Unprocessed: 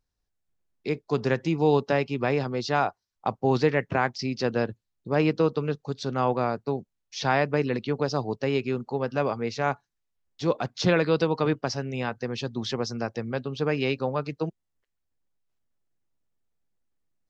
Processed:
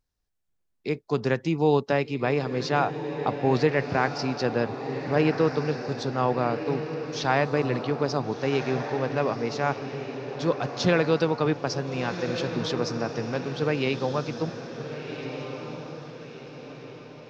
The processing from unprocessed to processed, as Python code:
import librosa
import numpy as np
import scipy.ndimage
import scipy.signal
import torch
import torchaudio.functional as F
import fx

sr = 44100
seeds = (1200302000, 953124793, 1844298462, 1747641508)

y = fx.echo_diffused(x, sr, ms=1457, feedback_pct=45, wet_db=-8.0)